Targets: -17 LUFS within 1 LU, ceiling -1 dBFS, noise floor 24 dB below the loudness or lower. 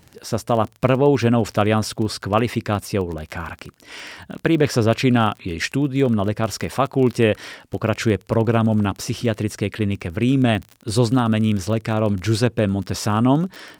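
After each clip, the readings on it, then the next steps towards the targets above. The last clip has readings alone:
ticks 26/s; loudness -20.5 LUFS; peak -1.0 dBFS; loudness target -17.0 LUFS
-> de-click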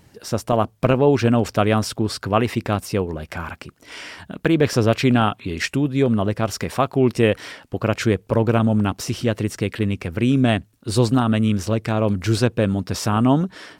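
ticks 0.072/s; loudness -20.5 LUFS; peak -1.0 dBFS; loudness target -17.0 LUFS
-> gain +3.5 dB; limiter -1 dBFS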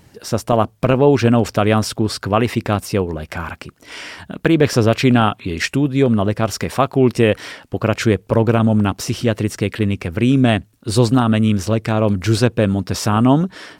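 loudness -17.0 LUFS; peak -1.0 dBFS; noise floor -52 dBFS

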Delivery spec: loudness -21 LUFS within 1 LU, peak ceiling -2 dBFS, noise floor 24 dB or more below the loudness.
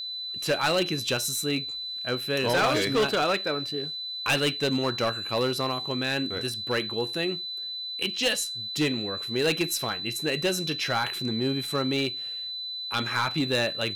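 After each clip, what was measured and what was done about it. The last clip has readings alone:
clipped 1.2%; flat tops at -19.0 dBFS; steady tone 4000 Hz; tone level -32 dBFS; loudness -27.0 LUFS; peak -19.0 dBFS; loudness target -21.0 LUFS
-> clip repair -19 dBFS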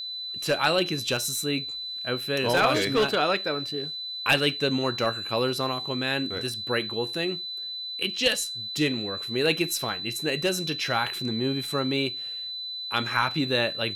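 clipped 0.0%; steady tone 4000 Hz; tone level -32 dBFS
-> notch 4000 Hz, Q 30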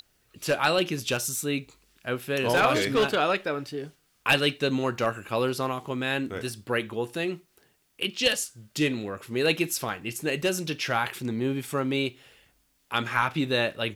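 steady tone none; loudness -27.0 LUFS; peak -9.0 dBFS; loudness target -21.0 LUFS
-> gain +6 dB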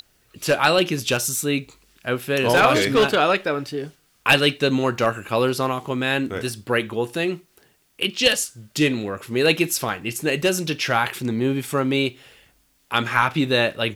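loudness -21.0 LUFS; peak -3.0 dBFS; noise floor -62 dBFS

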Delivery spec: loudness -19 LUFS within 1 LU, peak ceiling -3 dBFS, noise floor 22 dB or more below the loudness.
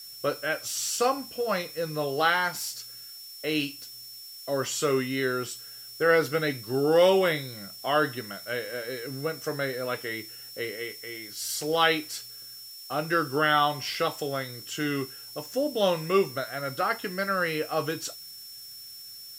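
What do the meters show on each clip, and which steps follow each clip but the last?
steady tone 5400 Hz; tone level -43 dBFS; noise floor -44 dBFS; noise floor target -50 dBFS; loudness -28.0 LUFS; peak -8.5 dBFS; loudness target -19.0 LUFS
-> notch 5400 Hz, Q 30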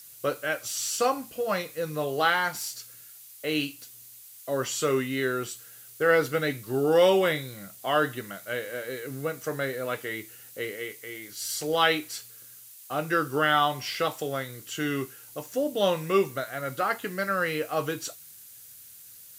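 steady tone none; noise floor -49 dBFS; noise floor target -50 dBFS
-> denoiser 6 dB, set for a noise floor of -49 dBFS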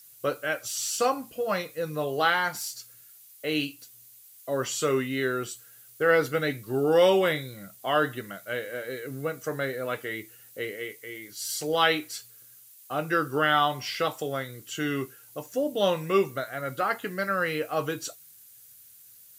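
noise floor -53 dBFS; loudness -28.0 LUFS; peak -8.5 dBFS; loudness target -19.0 LUFS
-> gain +9 dB; limiter -3 dBFS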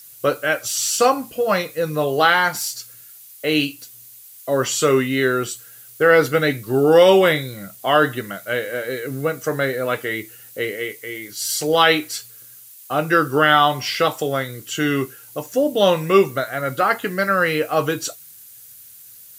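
loudness -19.0 LUFS; peak -3.0 dBFS; noise floor -44 dBFS

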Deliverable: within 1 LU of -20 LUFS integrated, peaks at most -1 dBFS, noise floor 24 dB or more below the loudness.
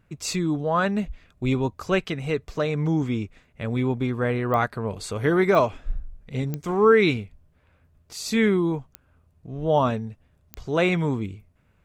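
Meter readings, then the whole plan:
clicks 5; loudness -24.0 LUFS; peak -6.5 dBFS; loudness target -20.0 LUFS
-> de-click; gain +4 dB

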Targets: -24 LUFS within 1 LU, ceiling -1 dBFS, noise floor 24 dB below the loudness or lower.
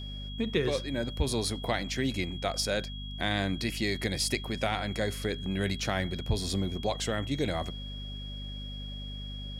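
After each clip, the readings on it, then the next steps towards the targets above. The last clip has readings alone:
hum 50 Hz; harmonics up to 250 Hz; hum level -37 dBFS; steady tone 3300 Hz; tone level -43 dBFS; loudness -32.0 LUFS; peak -13.0 dBFS; loudness target -24.0 LUFS
-> de-hum 50 Hz, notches 5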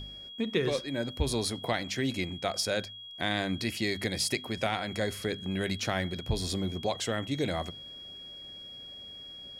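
hum none; steady tone 3300 Hz; tone level -43 dBFS
-> notch 3300 Hz, Q 30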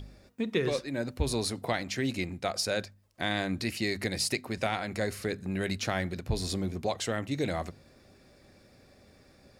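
steady tone none; loudness -32.0 LUFS; peak -13.5 dBFS; loudness target -24.0 LUFS
-> gain +8 dB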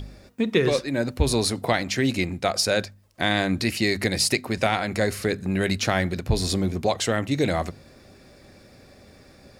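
loudness -24.0 LUFS; peak -5.5 dBFS; noise floor -52 dBFS

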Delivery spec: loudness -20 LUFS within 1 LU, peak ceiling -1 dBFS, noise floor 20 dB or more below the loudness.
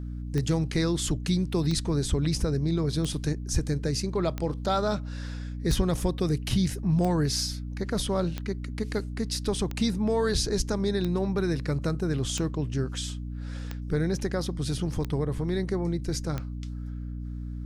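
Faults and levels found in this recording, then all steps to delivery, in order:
clicks 13; hum 60 Hz; harmonics up to 300 Hz; hum level -32 dBFS; loudness -28.5 LUFS; peak -13.0 dBFS; loudness target -20.0 LUFS
-> de-click; de-hum 60 Hz, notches 5; gain +8.5 dB

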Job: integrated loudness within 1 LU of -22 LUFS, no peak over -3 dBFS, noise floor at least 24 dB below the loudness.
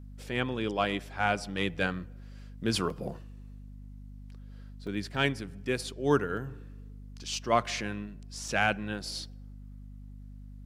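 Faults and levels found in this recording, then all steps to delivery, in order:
dropouts 4; longest dropout 2.4 ms; hum 50 Hz; harmonics up to 250 Hz; hum level -43 dBFS; loudness -31.5 LUFS; peak -11.5 dBFS; loudness target -22.0 LUFS
-> interpolate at 2.9/4.87/6.37/8.48, 2.4 ms; de-hum 50 Hz, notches 5; gain +9.5 dB; limiter -3 dBFS

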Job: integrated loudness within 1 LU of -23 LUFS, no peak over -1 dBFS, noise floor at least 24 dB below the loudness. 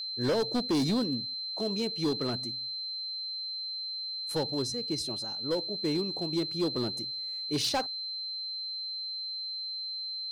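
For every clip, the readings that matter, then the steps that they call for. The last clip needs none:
clipped 1.7%; flat tops at -23.5 dBFS; steady tone 4100 Hz; tone level -34 dBFS; loudness -31.5 LUFS; peak -23.5 dBFS; loudness target -23.0 LUFS
-> clip repair -23.5 dBFS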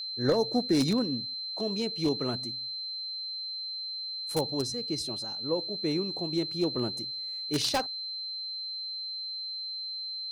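clipped 0.0%; steady tone 4100 Hz; tone level -34 dBFS
-> notch 4100 Hz, Q 30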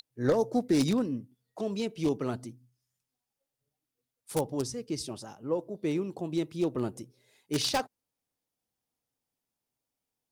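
steady tone none; loudness -31.5 LUFS; peak -14.0 dBFS; loudness target -23.0 LUFS
-> gain +8.5 dB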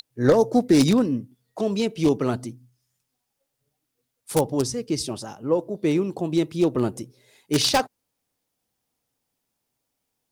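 loudness -23.0 LUFS; peak -5.5 dBFS; noise floor -79 dBFS

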